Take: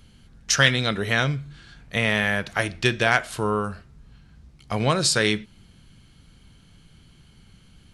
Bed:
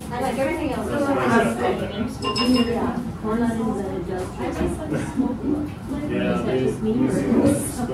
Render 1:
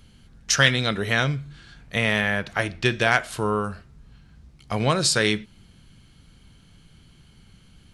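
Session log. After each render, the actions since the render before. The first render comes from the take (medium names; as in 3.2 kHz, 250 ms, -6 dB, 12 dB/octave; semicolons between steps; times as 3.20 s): 2.21–2.91 s: treble shelf 5.6 kHz -6.5 dB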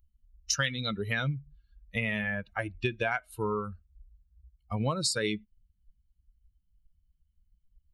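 expander on every frequency bin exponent 2; compression 5:1, threshold -26 dBFS, peak gain reduction 11.5 dB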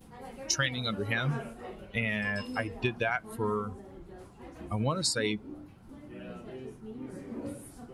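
add bed -21.5 dB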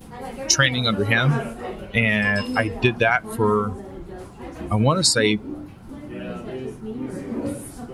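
trim +11.5 dB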